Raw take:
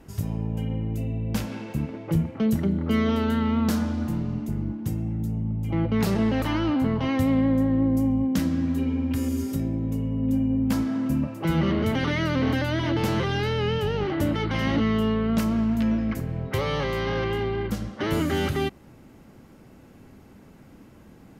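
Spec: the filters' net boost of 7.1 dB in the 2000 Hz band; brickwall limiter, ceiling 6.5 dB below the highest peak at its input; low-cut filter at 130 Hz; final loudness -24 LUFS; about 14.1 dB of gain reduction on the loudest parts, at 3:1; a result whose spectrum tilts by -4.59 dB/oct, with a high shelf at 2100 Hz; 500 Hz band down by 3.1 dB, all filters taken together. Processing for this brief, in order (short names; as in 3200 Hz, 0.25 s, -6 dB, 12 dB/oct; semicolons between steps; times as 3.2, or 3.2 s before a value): HPF 130 Hz; bell 500 Hz -4.5 dB; bell 2000 Hz +6 dB; high shelf 2100 Hz +5 dB; compressor 3:1, threshold -40 dBFS; gain +15.5 dB; limiter -15 dBFS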